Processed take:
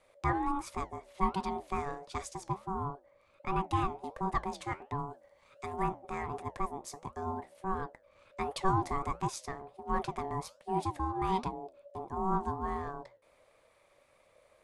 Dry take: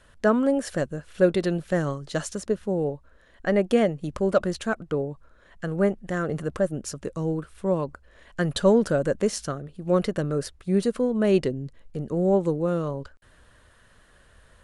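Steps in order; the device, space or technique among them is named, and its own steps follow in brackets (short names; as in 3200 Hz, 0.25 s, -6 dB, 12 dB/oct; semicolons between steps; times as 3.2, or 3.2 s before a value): 4.98–5.83 high shelf 2700 Hz +10.5 dB; alien voice (ring modulator 570 Hz; flange 1.4 Hz, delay 5.9 ms, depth 8.8 ms, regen -78%); gain -3 dB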